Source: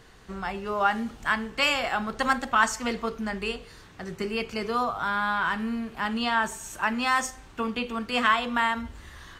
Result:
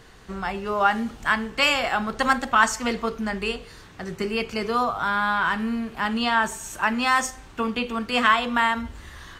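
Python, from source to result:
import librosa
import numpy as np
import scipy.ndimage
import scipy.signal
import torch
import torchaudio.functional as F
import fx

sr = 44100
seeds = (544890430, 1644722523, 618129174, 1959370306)

y = F.gain(torch.from_numpy(x), 3.5).numpy()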